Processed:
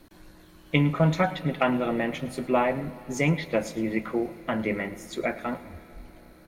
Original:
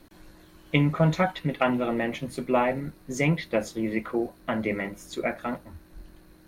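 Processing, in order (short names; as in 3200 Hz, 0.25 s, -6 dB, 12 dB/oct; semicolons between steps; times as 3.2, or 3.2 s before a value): echo 0.108 s -18 dB; on a send at -17 dB: reverb RT60 4.6 s, pre-delay 0.101 s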